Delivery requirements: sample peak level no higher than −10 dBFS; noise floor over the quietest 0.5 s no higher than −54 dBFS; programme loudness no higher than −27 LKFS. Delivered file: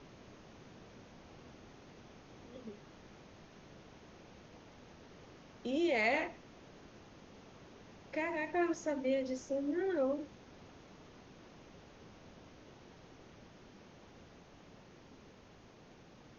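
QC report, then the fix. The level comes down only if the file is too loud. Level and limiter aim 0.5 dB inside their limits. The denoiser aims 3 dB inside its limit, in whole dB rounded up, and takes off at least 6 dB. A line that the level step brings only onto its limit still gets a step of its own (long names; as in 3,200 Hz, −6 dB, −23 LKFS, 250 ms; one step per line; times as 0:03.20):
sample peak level −19.5 dBFS: in spec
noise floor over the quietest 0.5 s −59 dBFS: in spec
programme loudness −36.0 LKFS: in spec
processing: no processing needed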